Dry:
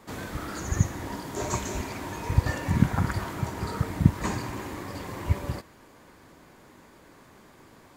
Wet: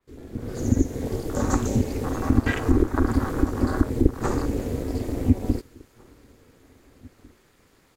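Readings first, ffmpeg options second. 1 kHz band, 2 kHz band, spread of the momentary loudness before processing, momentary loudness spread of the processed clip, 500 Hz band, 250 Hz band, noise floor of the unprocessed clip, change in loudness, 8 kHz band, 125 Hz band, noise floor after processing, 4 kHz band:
+1.0 dB, +1.5 dB, 12 LU, 7 LU, +8.5 dB, +8.0 dB, -54 dBFS, +4.5 dB, -0.5 dB, +1.0 dB, -60 dBFS, -1.5 dB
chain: -filter_complex "[0:a]afwtdn=0.0282,acrossover=split=200[s0][s1];[s0]alimiter=limit=0.133:level=0:latency=1:release=494[s2];[s2][s1]amix=inputs=2:normalize=0,acompressor=threshold=0.0355:ratio=2.5,equalizer=f=630:t=o:w=2:g=-10.5,asplit=2[s3][s4];[s4]adelay=1749,volume=0.0447,highshelf=f=4000:g=-39.4[s5];[s3][s5]amix=inputs=2:normalize=0,dynaudnorm=f=110:g=9:m=5.62,aeval=exprs='val(0)*sin(2*PI*170*n/s)':c=same,adynamicequalizer=threshold=0.00282:dfrequency=4200:dqfactor=0.7:tfrequency=4200:tqfactor=0.7:attack=5:release=100:ratio=0.375:range=2.5:mode=boostabove:tftype=highshelf,volume=1.26"

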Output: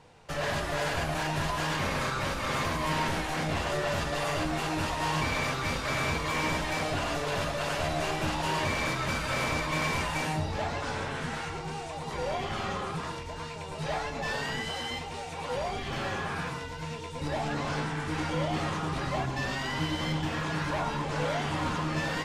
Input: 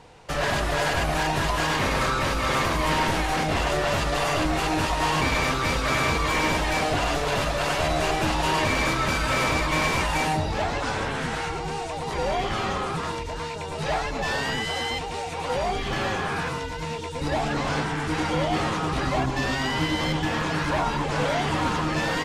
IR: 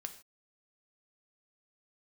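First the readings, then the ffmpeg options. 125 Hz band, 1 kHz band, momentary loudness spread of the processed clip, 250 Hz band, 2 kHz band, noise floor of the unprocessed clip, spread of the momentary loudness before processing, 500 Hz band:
-4.5 dB, -6.5 dB, 7 LU, -6.0 dB, -6.0 dB, -32 dBFS, 7 LU, -6.0 dB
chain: -filter_complex "[1:a]atrim=start_sample=2205,asetrate=48510,aresample=44100[s0];[0:a][s0]afir=irnorm=-1:irlink=0,volume=0.75"

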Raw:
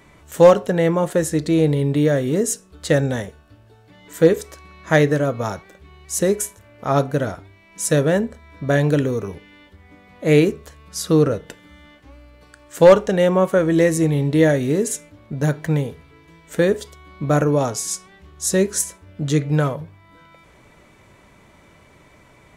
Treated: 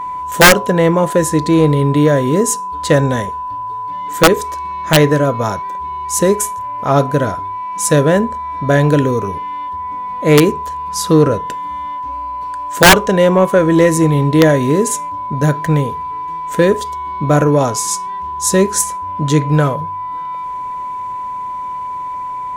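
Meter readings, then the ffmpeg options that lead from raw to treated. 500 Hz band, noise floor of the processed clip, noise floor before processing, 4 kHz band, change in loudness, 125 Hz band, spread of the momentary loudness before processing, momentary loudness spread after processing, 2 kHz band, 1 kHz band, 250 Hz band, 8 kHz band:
+3.5 dB, -24 dBFS, -51 dBFS, +12.5 dB, +4.5 dB, +5.5 dB, 14 LU, 13 LU, +10.0 dB, +13.0 dB, +5.5 dB, +7.5 dB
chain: -af "aeval=exprs='val(0)+0.0447*sin(2*PI*1000*n/s)':c=same,acontrast=31,aeval=exprs='(mod(1.26*val(0)+1,2)-1)/1.26':c=same,volume=1.12"

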